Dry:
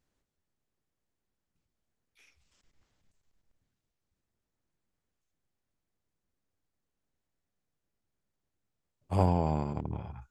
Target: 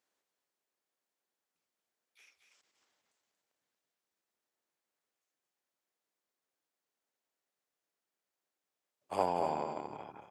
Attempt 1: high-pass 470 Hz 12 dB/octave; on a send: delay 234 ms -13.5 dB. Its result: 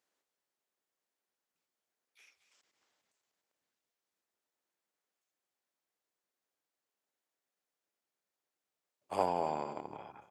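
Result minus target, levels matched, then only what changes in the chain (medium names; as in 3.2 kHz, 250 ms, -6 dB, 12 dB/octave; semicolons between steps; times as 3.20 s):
echo-to-direct -6.5 dB
change: delay 234 ms -7 dB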